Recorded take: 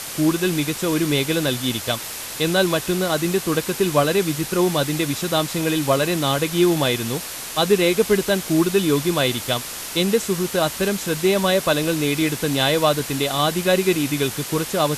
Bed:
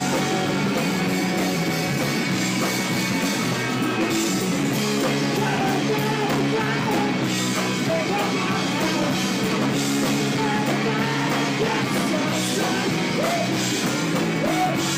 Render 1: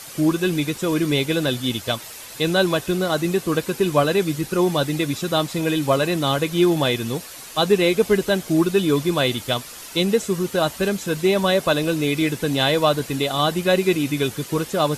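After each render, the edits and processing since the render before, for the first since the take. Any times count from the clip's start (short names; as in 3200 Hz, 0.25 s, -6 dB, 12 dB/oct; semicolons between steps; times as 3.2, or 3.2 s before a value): denoiser 9 dB, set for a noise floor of -32 dBFS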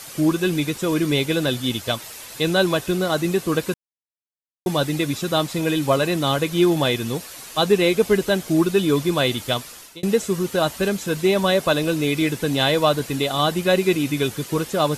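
3.74–4.66 mute; 9.51–10.03 fade out equal-power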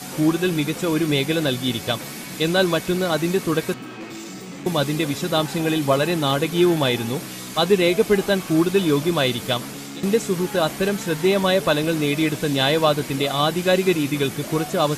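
add bed -13 dB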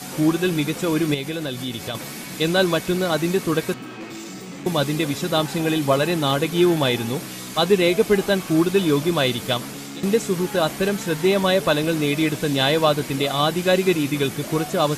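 1.14–1.95 compressor 2.5:1, threshold -26 dBFS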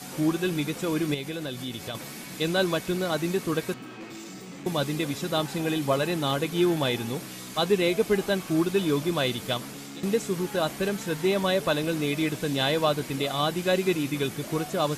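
gain -6 dB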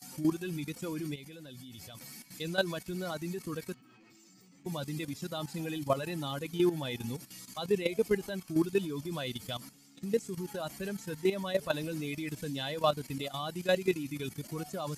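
per-bin expansion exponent 1.5; level quantiser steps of 12 dB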